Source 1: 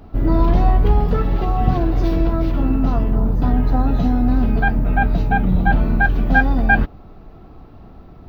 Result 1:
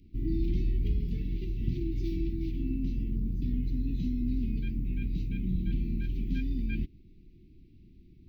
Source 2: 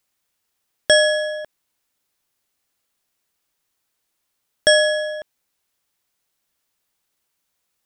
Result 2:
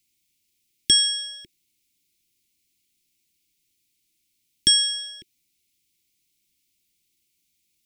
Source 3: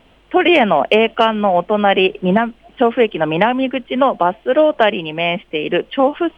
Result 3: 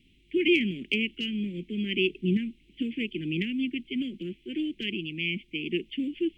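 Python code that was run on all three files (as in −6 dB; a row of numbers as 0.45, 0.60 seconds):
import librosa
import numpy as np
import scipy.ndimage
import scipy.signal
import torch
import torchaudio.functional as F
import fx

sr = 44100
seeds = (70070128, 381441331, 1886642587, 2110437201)

y = scipy.signal.sosfilt(scipy.signal.cheby1(4, 1.0, [360.0, 2200.0], 'bandstop', fs=sr, output='sos'), x)
y = y * 10.0 ** (-30 / 20.0) / np.sqrt(np.mean(np.square(y)))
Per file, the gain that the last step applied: −13.0, +3.5, −9.0 decibels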